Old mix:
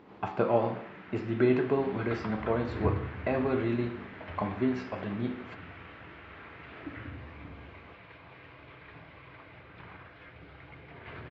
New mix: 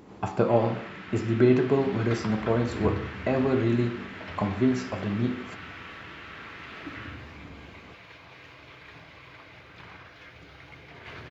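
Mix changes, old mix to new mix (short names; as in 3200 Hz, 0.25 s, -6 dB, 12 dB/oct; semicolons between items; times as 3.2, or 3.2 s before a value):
speech: add tilt -2.5 dB/oct; first sound: send +6.5 dB; master: remove air absorption 370 m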